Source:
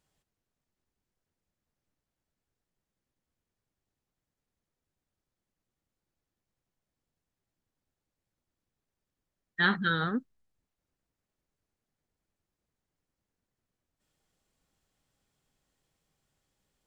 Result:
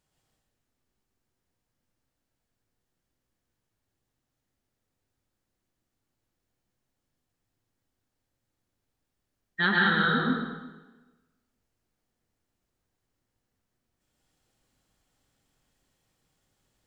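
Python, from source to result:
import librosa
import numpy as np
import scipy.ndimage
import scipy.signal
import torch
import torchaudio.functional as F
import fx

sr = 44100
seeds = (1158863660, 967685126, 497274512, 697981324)

y = fx.rev_plate(x, sr, seeds[0], rt60_s=1.2, hf_ratio=0.9, predelay_ms=105, drr_db=-3.0)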